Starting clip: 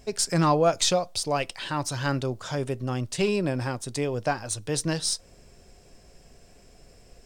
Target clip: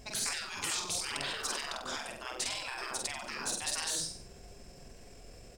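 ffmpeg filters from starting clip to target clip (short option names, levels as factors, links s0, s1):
-af "aecho=1:1:63|126|189|252|315|378:0.631|0.315|0.158|0.0789|0.0394|0.0197,atempo=1.3,afftfilt=real='re*lt(hypot(re,im),0.0631)':imag='im*lt(hypot(re,im),0.0631)':win_size=1024:overlap=0.75"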